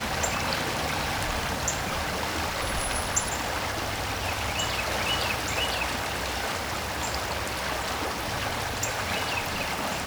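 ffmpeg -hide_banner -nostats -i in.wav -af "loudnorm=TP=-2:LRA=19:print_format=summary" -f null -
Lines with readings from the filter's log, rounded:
Input Integrated:    -28.1 LUFS
Input True Peak:     -10.5 dBTP
Input LRA:             1.6 LU
Input Threshold:     -38.1 LUFS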